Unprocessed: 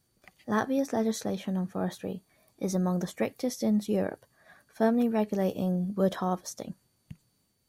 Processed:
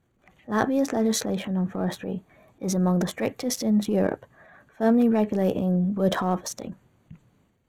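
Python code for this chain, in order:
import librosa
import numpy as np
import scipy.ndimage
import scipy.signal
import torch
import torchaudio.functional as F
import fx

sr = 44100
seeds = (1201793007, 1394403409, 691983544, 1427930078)

y = fx.wiener(x, sr, points=9)
y = fx.transient(y, sr, attack_db=-8, sustain_db=6)
y = y * 10.0 ** (6.0 / 20.0)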